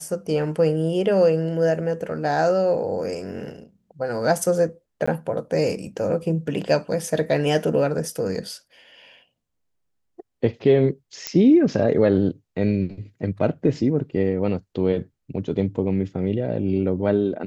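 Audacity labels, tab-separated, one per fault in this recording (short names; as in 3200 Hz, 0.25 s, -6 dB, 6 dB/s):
5.060000	5.080000	gap 15 ms
11.270000	11.270000	pop -8 dBFS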